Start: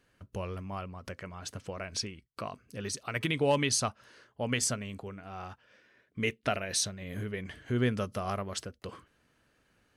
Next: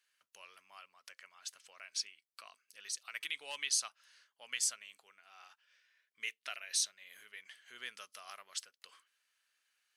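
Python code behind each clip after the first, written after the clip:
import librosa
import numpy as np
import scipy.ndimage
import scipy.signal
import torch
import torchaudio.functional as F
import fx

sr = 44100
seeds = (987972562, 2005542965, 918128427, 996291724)

y = scipy.signal.sosfilt(scipy.signal.bessel(2, 2700.0, 'highpass', norm='mag', fs=sr, output='sos'), x)
y = y * librosa.db_to_amplitude(-2.0)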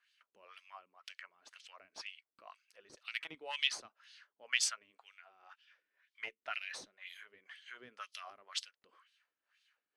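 y = fx.cheby_harmonics(x, sr, harmonics=(4, 6), levels_db=(-27, -23), full_scale_db=-18.5)
y = fx.wah_lfo(y, sr, hz=2.0, low_hz=250.0, high_hz=3800.0, q=2.1)
y = y * librosa.db_to_amplitude(9.5)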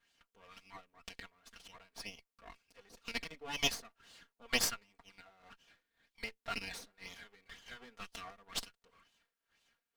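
y = fx.lower_of_two(x, sr, delay_ms=4.3)
y = y * librosa.db_to_amplitude(2.0)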